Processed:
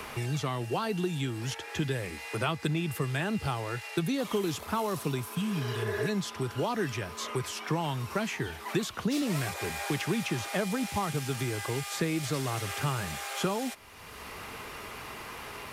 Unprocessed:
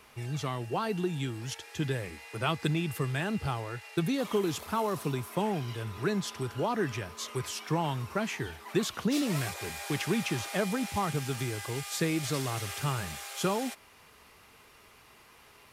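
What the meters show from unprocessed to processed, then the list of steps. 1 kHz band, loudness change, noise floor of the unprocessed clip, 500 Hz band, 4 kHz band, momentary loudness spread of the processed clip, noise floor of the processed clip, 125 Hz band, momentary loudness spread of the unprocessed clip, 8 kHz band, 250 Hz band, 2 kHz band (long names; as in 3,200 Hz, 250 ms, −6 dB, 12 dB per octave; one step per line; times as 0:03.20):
0.0 dB, 0.0 dB, −58 dBFS, 0.0 dB, +1.0 dB, 11 LU, −44 dBFS, +0.5 dB, 6 LU, 0.0 dB, 0.0 dB, +2.0 dB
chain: healed spectral selection 0:05.29–0:06.05, 310–2,200 Hz both
multiband upward and downward compressor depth 70%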